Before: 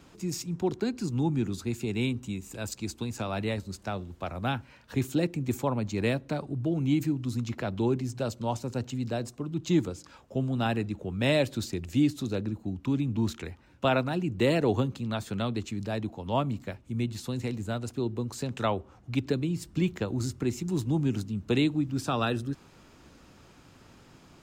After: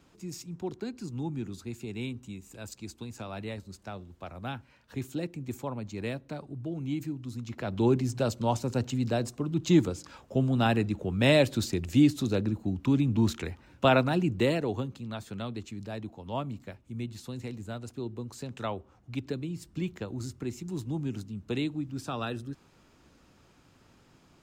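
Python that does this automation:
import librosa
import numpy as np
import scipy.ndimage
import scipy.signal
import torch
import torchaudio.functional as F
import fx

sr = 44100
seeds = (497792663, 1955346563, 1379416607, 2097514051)

y = fx.gain(x, sr, db=fx.line((7.42, -7.0), (7.88, 3.0), (14.26, 3.0), (14.68, -6.0)))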